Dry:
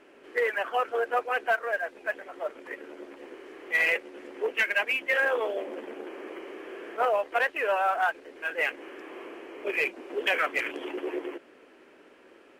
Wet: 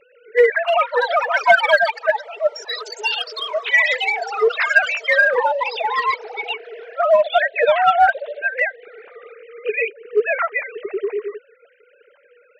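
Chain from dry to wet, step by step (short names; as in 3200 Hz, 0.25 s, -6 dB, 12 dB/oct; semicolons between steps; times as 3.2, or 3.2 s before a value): sine-wave speech; dynamic EQ 2700 Hz, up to -4 dB, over -43 dBFS, Q 1.8; in parallel at -10 dB: overloaded stage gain 22.5 dB; on the sum: notch 520 Hz, Q 12; echoes that change speed 0.413 s, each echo +6 st, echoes 3, each echo -6 dB; gain +9 dB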